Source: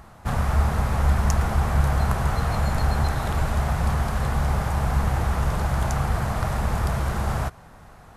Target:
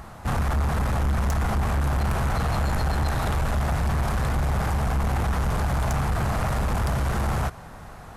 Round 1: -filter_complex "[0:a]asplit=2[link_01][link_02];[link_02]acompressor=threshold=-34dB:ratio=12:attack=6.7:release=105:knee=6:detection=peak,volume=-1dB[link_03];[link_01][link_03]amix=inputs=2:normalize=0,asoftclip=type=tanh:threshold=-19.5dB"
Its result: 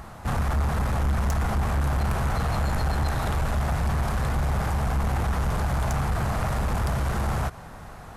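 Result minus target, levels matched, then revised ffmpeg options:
downward compressor: peak gain reduction +9 dB
-filter_complex "[0:a]asplit=2[link_01][link_02];[link_02]acompressor=threshold=-24dB:ratio=12:attack=6.7:release=105:knee=6:detection=peak,volume=-1dB[link_03];[link_01][link_03]amix=inputs=2:normalize=0,asoftclip=type=tanh:threshold=-19.5dB"

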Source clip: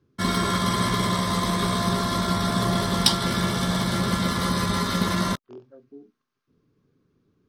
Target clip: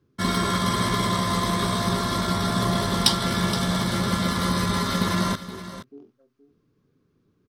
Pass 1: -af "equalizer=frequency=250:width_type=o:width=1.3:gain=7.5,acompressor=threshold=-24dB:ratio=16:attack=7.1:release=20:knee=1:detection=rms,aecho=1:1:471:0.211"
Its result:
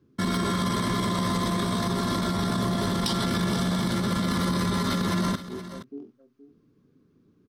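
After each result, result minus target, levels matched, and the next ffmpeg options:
downward compressor: peak gain reduction +13.5 dB; 250 Hz band +2.5 dB
-af "equalizer=frequency=250:width_type=o:width=1.3:gain=7.5,aecho=1:1:471:0.211"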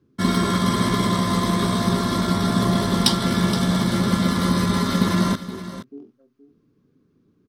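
250 Hz band +3.0 dB
-af "aecho=1:1:471:0.211"

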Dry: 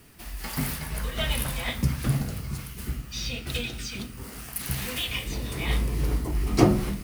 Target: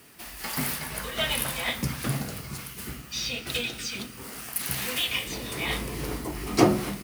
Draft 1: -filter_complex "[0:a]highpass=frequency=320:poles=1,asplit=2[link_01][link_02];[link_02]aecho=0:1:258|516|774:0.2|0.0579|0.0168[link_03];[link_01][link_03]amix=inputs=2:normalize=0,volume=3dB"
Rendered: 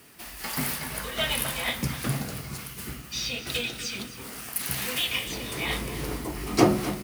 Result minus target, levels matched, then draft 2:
echo-to-direct +9.5 dB
-filter_complex "[0:a]highpass=frequency=320:poles=1,asplit=2[link_01][link_02];[link_02]aecho=0:1:258|516:0.0668|0.0194[link_03];[link_01][link_03]amix=inputs=2:normalize=0,volume=3dB"

